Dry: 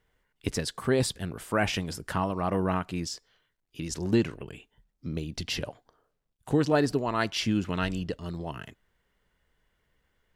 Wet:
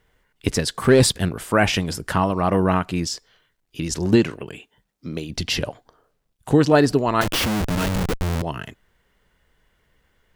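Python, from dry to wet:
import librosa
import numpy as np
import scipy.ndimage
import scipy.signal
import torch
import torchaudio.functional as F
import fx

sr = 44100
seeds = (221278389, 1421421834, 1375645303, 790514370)

y = fx.leveller(x, sr, passes=1, at=(0.8, 1.29))
y = fx.highpass(y, sr, hz=fx.line((4.15, 130.0), (5.29, 340.0)), slope=6, at=(4.15, 5.29), fade=0.02)
y = fx.schmitt(y, sr, flips_db=-35.0, at=(7.21, 8.42))
y = y * librosa.db_to_amplitude(8.5)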